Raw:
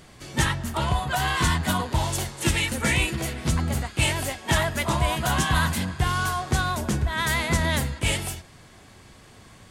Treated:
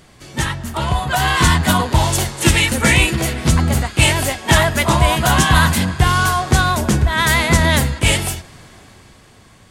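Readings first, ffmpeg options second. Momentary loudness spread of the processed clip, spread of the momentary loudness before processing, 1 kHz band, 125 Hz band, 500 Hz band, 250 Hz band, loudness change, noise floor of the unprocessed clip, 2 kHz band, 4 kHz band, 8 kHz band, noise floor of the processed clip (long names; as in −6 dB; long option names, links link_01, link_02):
8 LU, 4 LU, +9.0 dB, +9.5 dB, +9.5 dB, +9.5 dB, +9.5 dB, −50 dBFS, +9.5 dB, +9.5 dB, +9.5 dB, −47 dBFS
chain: -af "dynaudnorm=framelen=120:gausssize=17:maxgain=9dB,volume=2dB"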